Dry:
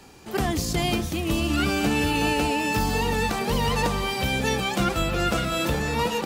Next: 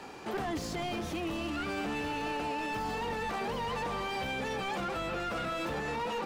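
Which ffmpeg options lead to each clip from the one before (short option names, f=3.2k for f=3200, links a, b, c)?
-filter_complex "[0:a]asplit=2[a][b];[b]highpass=f=720:p=1,volume=22dB,asoftclip=type=tanh:threshold=-11dB[c];[a][c]amix=inputs=2:normalize=0,lowpass=f=1.2k:p=1,volume=-6dB,alimiter=limit=-22dB:level=0:latency=1:release=164,volume=-6dB"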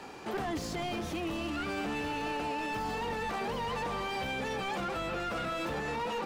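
-af anull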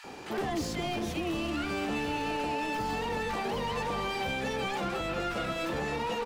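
-filter_complex "[0:a]acrossover=split=1200[a][b];[a]adelay=40[c];[c][b]amix=inputs=2:normalize=0,volume=3dB"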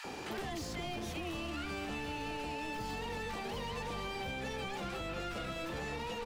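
-filter_complex "[0:a]acrossover=split=110|580|2000[a][b][c][d];[a]acompressor=threshold=-49dB:ratio=4[e];[b]acompressor=threshold=-48dB:ratio=4[f];[c]acompressor=threshold=-50dB:ratio=4[g];[d]acompressor=threshold=-50dB:ratio=4[h];[e][f][g][h]amix=inputs=4:normalize=0,volume=3dB"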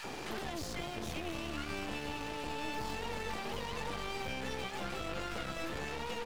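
-af "aeval=exprs='clip(val(0),-1,0.00266)':c=same,volume=3.5dB"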